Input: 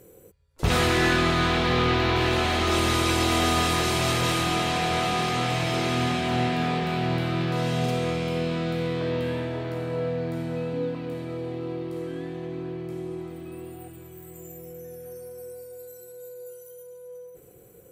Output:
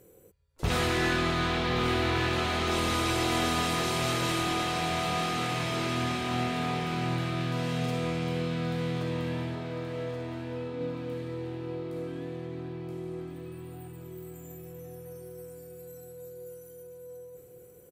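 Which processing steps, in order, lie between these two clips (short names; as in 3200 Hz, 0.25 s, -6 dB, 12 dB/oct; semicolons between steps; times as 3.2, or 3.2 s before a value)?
9.55–10.81 tone controls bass -8 dB, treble -14 dB; feedback echo 1.126 s, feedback 48%, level -9 dB; gain -5.5 dB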